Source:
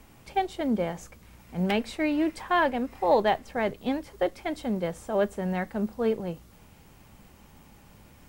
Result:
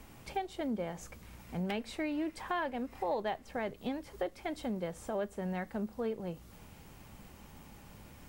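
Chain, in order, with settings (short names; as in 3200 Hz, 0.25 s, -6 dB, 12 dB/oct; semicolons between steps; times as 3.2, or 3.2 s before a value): compressor 2.5:1, threshold -37 dBFS, peak gain reduction 13.5 dB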